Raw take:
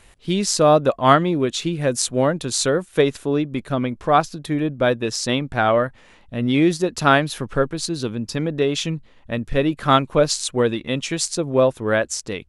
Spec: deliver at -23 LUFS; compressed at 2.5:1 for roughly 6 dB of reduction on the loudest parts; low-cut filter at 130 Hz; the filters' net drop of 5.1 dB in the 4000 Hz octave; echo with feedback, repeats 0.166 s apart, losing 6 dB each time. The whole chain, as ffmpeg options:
-af "highpass=130,equalizer=f=4k:t=o:g=-6.5,acompressor=threshold=-18dB:ratio=2.5,aecho=1:1:166|332|498|664|830|996:0.501|0.251|0.125|0.0626|0.0313|0.0157,volume=-0.5dB"

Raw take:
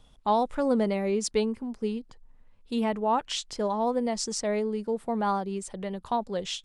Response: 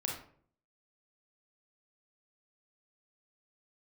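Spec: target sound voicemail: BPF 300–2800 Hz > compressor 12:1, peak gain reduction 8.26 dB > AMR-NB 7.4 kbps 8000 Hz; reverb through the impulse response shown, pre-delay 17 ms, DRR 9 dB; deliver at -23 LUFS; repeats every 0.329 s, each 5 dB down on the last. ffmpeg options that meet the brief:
-filter_complex "[0:a]aecho=1:1:329|658|987|1316|1645|1974|2303:0.562|0.315|0.176|0.0988|0.0553|0.031|0.0173,asplit=2[a][b];[1:a]atrim=start_sample=2205,adelay=17[c];[b][c]afir=irnorm=-1:irlink=0,volume=-11.5dB[d];[a][d]amix=inputs=2:normalize=0,highpass=300,lowpass=2.8k,acompressor=threshold=-26dB:ratio=12,volume=10dB" -ar 8000 -c:a libopencore_amrnb -b:a 7400

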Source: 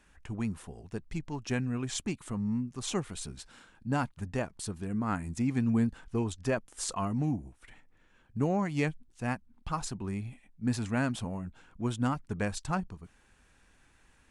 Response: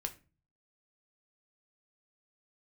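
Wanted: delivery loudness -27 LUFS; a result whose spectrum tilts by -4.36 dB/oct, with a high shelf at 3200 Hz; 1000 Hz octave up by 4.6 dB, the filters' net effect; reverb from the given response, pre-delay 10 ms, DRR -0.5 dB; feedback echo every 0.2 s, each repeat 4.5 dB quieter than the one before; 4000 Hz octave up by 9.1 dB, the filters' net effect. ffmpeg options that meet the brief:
-filter_complex "[0:a]equalizer=f=1k:t=o:g=5,highshelf=f=3.2k:g=3.5,equalizer=f=4k:t=o:g=8.5,aecho=1:1:200|400|600|800|1000|1200|1400|1600|1800:0.596|0.357|0.214|0.129|0.0772|0.0463|0.0278|0.0167|0.01,asplit=2[a][b];[1:a]atrim=start_sample=2205,adelay=10[c];[b][c]afir=irnorm=-1:irlink=0,volume=1dB[d];[a][d]amix=inputs=2:normalize=0,volume=0.5dB"

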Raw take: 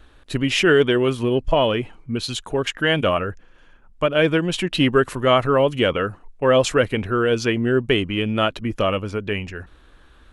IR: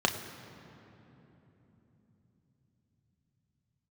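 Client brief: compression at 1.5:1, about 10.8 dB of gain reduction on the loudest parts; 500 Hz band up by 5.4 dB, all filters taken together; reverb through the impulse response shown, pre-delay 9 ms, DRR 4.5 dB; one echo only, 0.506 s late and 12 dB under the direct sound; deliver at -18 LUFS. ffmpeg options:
-filter_complex "[0:a]equalizer=f=500:t=o:g=6.5,acompressor=threshold=-38dB:ratio=1.5,aecho=1:1:506:0.251,asplit=2[a][b];[1:a]atrim=start_sample=2205,adelay=9[c];[b][c]afir=irnorm=-1:irlink=0,volume=-15.5dB[d];[a][d]amix=inputs=2:normalize=0,volume=6.5dB"

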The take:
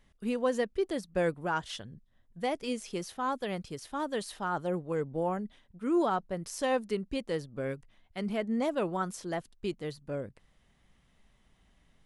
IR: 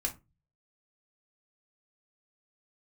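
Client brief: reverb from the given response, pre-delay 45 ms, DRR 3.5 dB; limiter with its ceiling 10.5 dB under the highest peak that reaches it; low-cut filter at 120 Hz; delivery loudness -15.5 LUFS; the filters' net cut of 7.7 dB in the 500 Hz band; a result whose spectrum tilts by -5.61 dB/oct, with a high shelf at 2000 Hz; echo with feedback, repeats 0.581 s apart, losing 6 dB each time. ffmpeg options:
-filter_complex "[0:a]highpass=120,equalizer=f=500:t=o:g=-9,highshelf=f=2k:g=-6.5,alimiter=level_in=9dB:limit=-24dB:level=0:latency=1,volume=-9dB,aecho=1:1:581|1162|1743|2324|2905|3486:0.501|0.251|0.125|0.0626|0.0313|0.0157,asplit=2[a][b];[1:a]atrim=start_sample=2205,adelay=45[c];[b][c]afir=irnorm=-1:irlink=0,volume=-6.5dB[d];[a][d]amix=inputs=2:normalize=0,volume=25dB"

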